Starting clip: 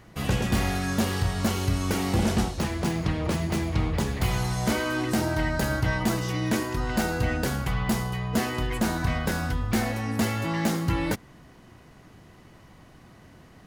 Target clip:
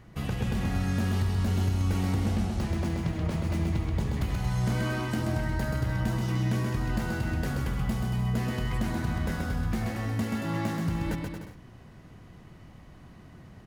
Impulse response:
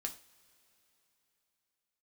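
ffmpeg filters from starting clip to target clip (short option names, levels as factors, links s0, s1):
-af "bass=f=250:g=6,treble=f=4000:g=-3,acompressor=threshold=0.0708:ratio=6,aecho=1:1:130|227.5|300.6|355.5|396.6:0.631|0.398|0.251|0.158|0.1,volume=0.596"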